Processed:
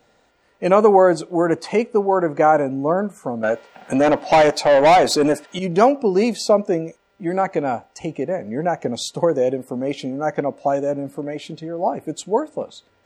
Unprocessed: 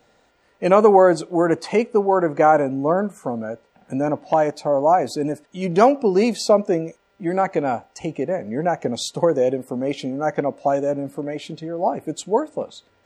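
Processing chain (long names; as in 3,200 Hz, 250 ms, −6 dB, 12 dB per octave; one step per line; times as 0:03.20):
0:03.43–0:05.59: mid-hump overdrive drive 21 dB, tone 7,200 Hz, clips at −5.5 dBFS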